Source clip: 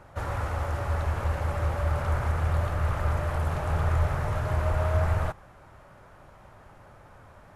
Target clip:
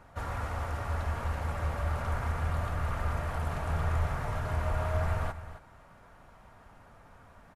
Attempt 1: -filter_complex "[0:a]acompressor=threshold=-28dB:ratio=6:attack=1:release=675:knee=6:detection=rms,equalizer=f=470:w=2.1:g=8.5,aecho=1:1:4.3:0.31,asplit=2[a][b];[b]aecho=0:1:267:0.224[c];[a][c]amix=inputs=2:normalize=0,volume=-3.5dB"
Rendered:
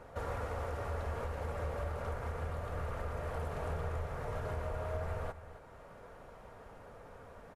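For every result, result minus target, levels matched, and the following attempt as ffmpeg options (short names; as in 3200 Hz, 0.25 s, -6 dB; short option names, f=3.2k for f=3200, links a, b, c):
compressor: peak gain reduction +11 dB; 500 Hz band +6.0 dB
-filter_complex "[0:a]equalizer=f=470:w=2.1:g=8.5,aecho=1:1:4.3:0.31,asplit=2[a][b];[b]aecho=0:1:267:0.224[c];[a][c]amix=inputs=2:normalize=0,volume=-3.5dB"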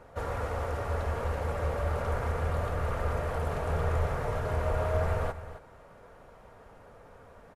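500 Hz band +5.5 dB
-filter_complex "[0:a]equalizer=f=470:w=2.1:g=-3.5,aecho=1:1:4.3:0.31,asplit=2[a][b];[b]aecho=0:1:267:0.224[c];[a][c]amix=inputs=2:normalize=0,volume=-3.5dB"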